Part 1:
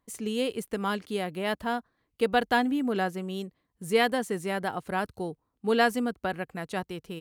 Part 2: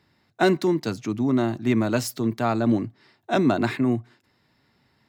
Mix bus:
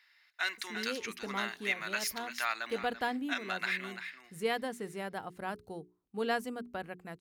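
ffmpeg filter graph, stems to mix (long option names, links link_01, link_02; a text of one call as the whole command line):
ffmpeg -i stem1.wav -i stem2.wav -filter_complex "[0:a]bandreject=frequency=60:width_type=h:width=6,bandreject=frequency=120:width_type=h:width=6,bandreject=frequency=180:width_type=h:width=6,bandreject=frequency=240:width_type=h:width=6,bandreject=frequency=300:width_type=h:width=6,bandreject=frequency=360:width_type=h:width=6,bandreject=frequency=420:width_type=h:width=6,adelay=500,volume=-9dB[link_01];[1:a]highpass=frequency=1900:width_type=q:width=2,bandreject=frequency=7700:width=5.8,volume=0dB,asplit=2[link_02][link_03];[link_03]volume=-13.5dB,aecho=0:1:338:1[link_04];[link_01][link_02][link_04]amix=inputs=3:normalize=0,alimiter=limit=-19.5dB:level=0:latency=1:release=482" out.wav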